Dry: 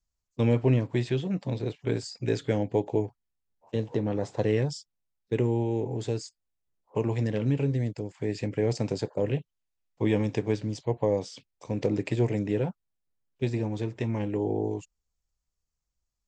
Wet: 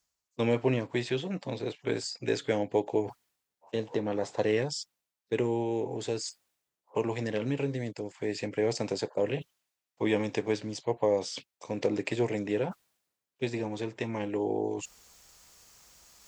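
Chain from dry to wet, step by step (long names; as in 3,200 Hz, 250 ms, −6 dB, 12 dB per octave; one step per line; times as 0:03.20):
high-pass filter 500 Hz 6 dB per octave
reversed playback
upward compression, threshold −36 dBFS
reversed playback
level +3 dB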